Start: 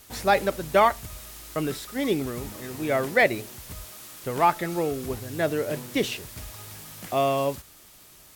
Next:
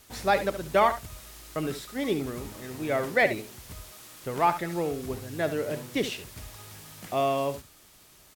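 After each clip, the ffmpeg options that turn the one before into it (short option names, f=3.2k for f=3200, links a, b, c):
-af "highshelf=f=11k:g=-5,aecho=1:1:70:0.266,volume=-3dB"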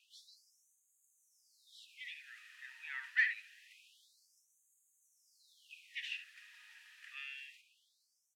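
-filter_complex "[0:a]asoftclip=type=tanh:threshold=-18dB,asplit=3[a][b][c];[a]bandpass=f=530:t=q:w=8,volume=0dB[d];[b]bandpass=f=1.84k:t=q:w=8,volume=-6dB[e];[c]bandpass=f=2.48k:t=q:w=8,volume=-9dB[f];[d][e][f]amix=inputs=3:normalize=0,afftfilt=real='re*gte(b*sr/1024,860*pow(6400/860,0.5+0.5*sin(2*PI*0.26*pts/sr)))':imag='im*gte(b*sr/1024,860*pow(6400/860,0.5+0.5*sin(2*PI*0.26*pts/sr)))':win_size=1024:overlap=0.75,volume=7dB"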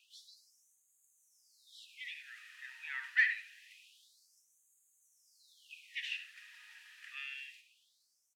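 -af "aecho=1:1:102:0.158,volume=2.5dB"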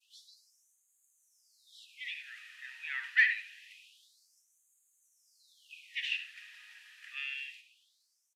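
-af "highpass=900,adynamicequalizer=threshold=0.00224:dfrequency=2800:dqfactor=0.93:tfrequency=2800:tqfactor=0.93:attack=5:release=100:ratio=0.375:range=3:mode=boostabove:tftype=bell,aresample=32000,aresample=44100"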